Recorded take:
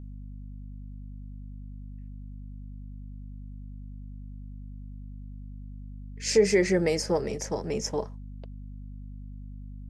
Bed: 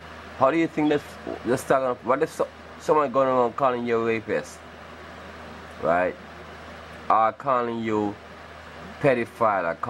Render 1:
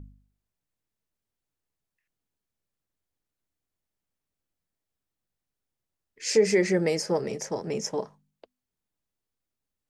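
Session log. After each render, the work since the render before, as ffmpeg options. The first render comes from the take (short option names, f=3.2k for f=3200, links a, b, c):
-af "bandreject=f=50:t=h:w=4,bandreject=f=100:t=h:w=4,bandreject=f=150:t=h:w=4,bandreject=f=200:t=h:w=4,bandreject=f=250:t=h:w=4"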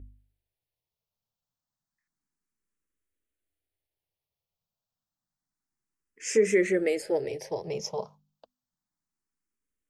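-filter_complex "[0:a]asplit=2[a][b];[b]afreqshift=0.29[c];[a][c]amix=inputs=2:normalize=1"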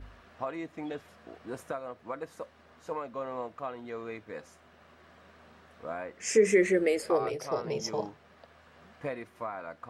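-filter_complex "[1:a]volume=-16dB[a];[0:a][a]amix=inputs=2:normalize=0"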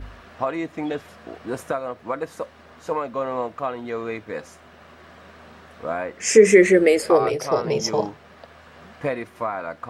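-af "volume=10.5dB"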